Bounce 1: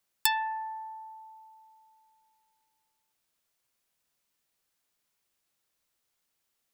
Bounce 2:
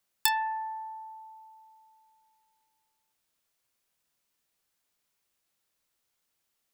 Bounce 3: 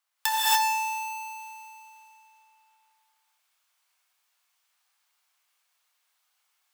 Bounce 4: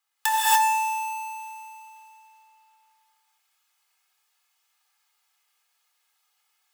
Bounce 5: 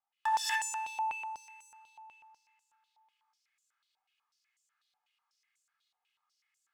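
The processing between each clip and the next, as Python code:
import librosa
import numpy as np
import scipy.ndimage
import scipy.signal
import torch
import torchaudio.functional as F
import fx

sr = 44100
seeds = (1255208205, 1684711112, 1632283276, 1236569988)

y1 = fx.doubler(x, sr, ms=26.0, db=-13.5)
y2 = fx.halfwave_hold(y1, sr)
y2 = fx.ladder_highpass(y2, sr, hz=700.0, resonance_pct=25)
y2 = fx.rev_gated(y2, sr, seeds[0], gate_ms=310, shape='rising', drr_db=-8.0)
y3 = y2 + 0.73 * np.pad(y2, (int(2.4 * sr / 1000.0), 0))[:len(y2)]
y4 = fx.filter_held_bandpass(y3, sr, hz=8.1, low_hz=780.0, high_hz=7200.0)
y4 = F.gain(torch.from_numpy(y4), 1.5).numpy()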